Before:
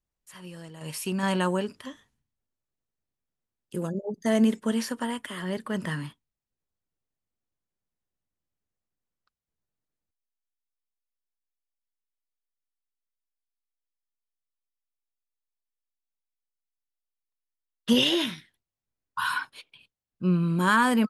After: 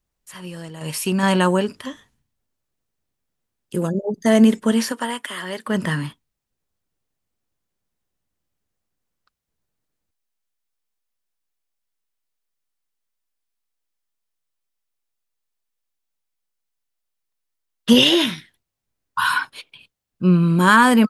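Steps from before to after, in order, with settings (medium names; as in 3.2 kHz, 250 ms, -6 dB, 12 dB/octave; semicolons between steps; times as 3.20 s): 4.91–5.66 s: high-pass 420 Hz -> 940 Hz 6 dB/octave; trim +8.5 dB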